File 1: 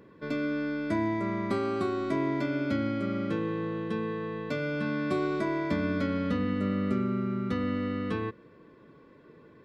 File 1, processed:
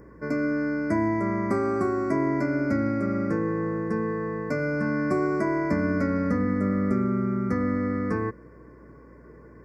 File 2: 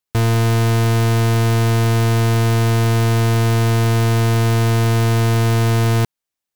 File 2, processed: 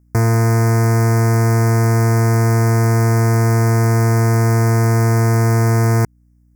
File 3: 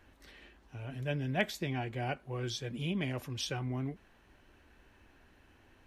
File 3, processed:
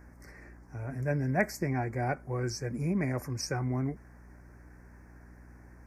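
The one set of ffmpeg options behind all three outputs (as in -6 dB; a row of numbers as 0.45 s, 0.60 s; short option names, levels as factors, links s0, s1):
-filter_complex "[0:a]highpass=41,asplit=2[s0][s1];[s1]acompressor=threshold=0.0562:ratio=6,volume=0.75[s2];[s0][s2]amix=inputs=2:normalize=0,aeval=exprs='val(0)+0.00251*(sin(2*PI*60*n/s)+sin(2*PI*2*60*n/s)/2+sin(2*PI*3*60*n/s)/3+sin(2*PI*4*60*n/s)/4+sin(2*PI*5*60*n/s)/5)':c=same,asuperstop=centerf=3300:order=8:qfactor=1.2"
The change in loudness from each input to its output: +4.5 LU, +1.5 LU, +4.0 LU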